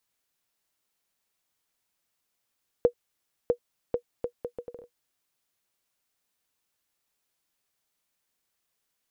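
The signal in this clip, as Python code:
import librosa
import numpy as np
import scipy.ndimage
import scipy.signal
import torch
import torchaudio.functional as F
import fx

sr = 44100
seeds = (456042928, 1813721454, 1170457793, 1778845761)

y = fx.bouncing_ball(sr, first_gap_s=0.65, ratio=0.68, hz=482.0, decay_ms=85.0, level_db=-9.5)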